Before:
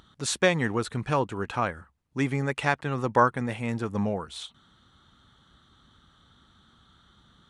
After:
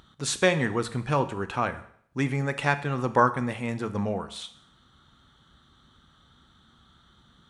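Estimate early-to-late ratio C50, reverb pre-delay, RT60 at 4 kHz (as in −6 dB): 14.0 dB, 9 ms, 0.65 s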